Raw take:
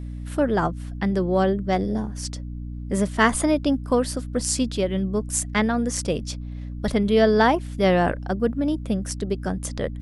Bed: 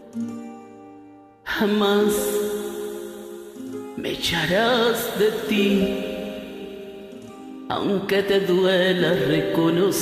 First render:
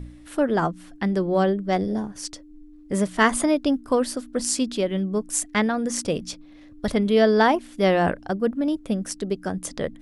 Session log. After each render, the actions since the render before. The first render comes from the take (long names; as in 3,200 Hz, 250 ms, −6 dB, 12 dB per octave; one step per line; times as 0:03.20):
hum removal 60 Hz, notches 4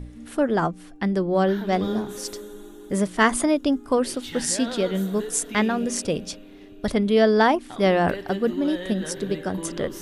mix in bed −15 dB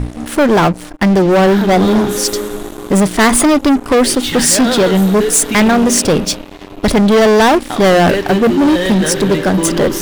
leveller curve on the samples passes 5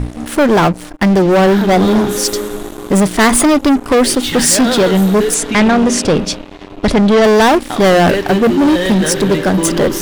0:05.34–0:07.24: high-frequency loss of the air 52 metres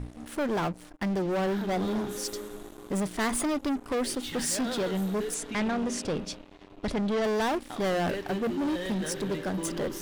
level −18.5 dB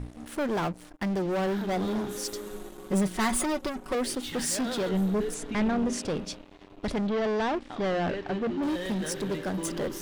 0:02.46–0:03.95: comb filter 5.4 ms, depth 74%
0:04.89–0:05.93: spectral tilt −1.5 dB per octave
0:07.07–0:08.63: high-frequency loss of the air 120 metres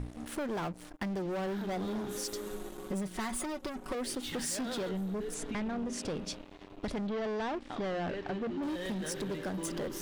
downward compressor, threshold −34 dBFS, peak gain reduction 11 dB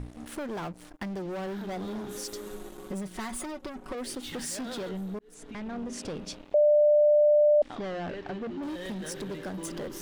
0:03.51–0:03.98: high-shelf EQ 5,000 Hz −6.5 dB
0:05.19–0:05.77: fade in
0:06.54–0:07.62: beep over 595 Hz −17 dBFS